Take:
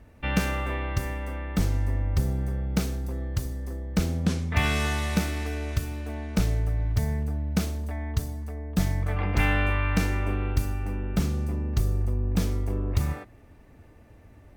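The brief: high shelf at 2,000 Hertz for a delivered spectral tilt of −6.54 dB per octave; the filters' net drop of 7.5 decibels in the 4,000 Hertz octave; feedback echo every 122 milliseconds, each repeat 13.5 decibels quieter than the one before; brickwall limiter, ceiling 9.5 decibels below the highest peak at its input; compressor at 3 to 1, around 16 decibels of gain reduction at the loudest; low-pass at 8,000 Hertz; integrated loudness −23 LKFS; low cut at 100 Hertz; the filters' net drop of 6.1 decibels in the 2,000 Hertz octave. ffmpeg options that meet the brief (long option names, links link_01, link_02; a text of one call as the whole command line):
ffmpeg -i in.wav -af "highpass=100,lowpass=8000,highshelf=frequency=2000:gain=-3,equalizer=frequency=2000:width_type=o:gain=-4.5,equalizer=frequency=4000:width_type=o:gain=-5,acompressor=threshold=-43dB:ratio=3,alimiter=level_in=10.5dB:limit=-24dB:level=0:latency=1,volume=-10.5dB,aecho=1:1:122|244:0.211|0.0444,volume=21dB" out.wav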